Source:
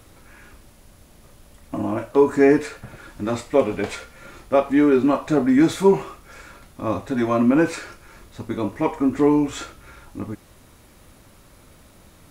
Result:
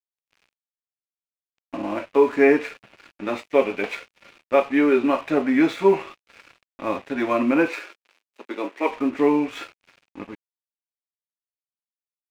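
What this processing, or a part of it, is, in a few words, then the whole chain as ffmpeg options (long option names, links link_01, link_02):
pocket radio on a weak battery: -filter_complex "[0:a]highpass=270,lowpass=3900,aeval=exprs='sgn(val(0))*max(abs(val(0))-0.0075,0)':channel_layout=same,equalizer=frequency=2500:width_type=o:width=0.57:gain=8.5,asettb=1/sr,asplit=3[link_01][link_02][link_03];[link_01]atrim=end=7.684[link_04];[link_02]atrim=start=7.68:end=8.9,asetpts=PTS-STARTPTS,afade=type=in:duration=0.004:curve=qsin,afade=type=out:start_time=1.216:duration=0.004:curve=qsin,highpass=frequency=280:width=0.5412,highpass=frequency=280:width=1.3066[link_05];[link_03]atrim=start=8.896[link_06];[link_04][link_05]acrossfade=duration=0.004:curve1=hsin:curve2=qsin[link_07];[link_07][link_06]acrossfade=duration=0.004:curve1=qsin:curve2=hsin"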